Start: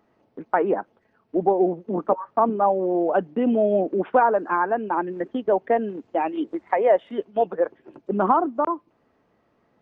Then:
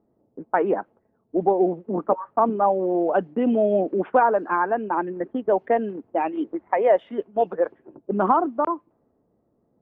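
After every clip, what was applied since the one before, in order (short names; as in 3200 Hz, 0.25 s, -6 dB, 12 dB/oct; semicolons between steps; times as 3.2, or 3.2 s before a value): low-pass opened by the level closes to 520 Hz, open at -14.5 dBFS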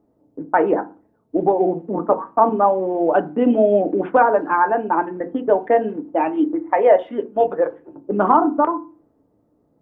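FDN reverb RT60 0.31 s, low-frequency decay 1.55×, high-frequency decay 0.4×, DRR 7.5 dB; gain +3.5 dB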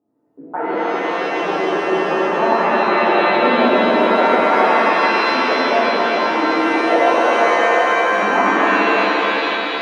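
regenerating reverse delay 0.137 s, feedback 77%, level -2 dB; HPF 130 Hz 12 dB/oct; shimmer reverb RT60 3.3 s, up +7 st, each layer -2 dB, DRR -7.5 dB; gain -12 dB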